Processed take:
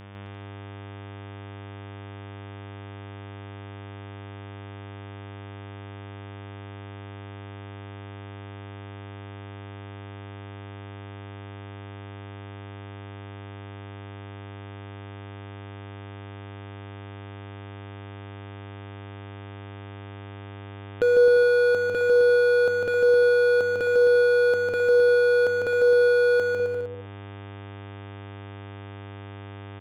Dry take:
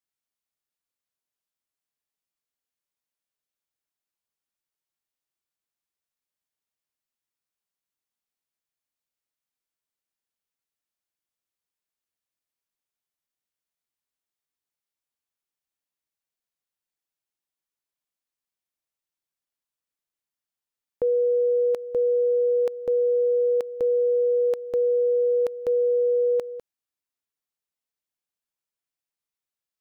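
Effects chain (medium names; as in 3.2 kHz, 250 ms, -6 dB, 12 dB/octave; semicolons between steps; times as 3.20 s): local Wiener filter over 25 samples; bass shelf 130 Hz +4 dB; mains buzz 100 Hz, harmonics 36, -51 dBFS -7 dB/octave; hard clipper -23.5 dBFS, distortion -14 dB; on a send: bouncing-ball echo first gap 150 ms, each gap 0.75×, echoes 5; on the sum: tape noise reduction on one side only encoder only; trim +6 dB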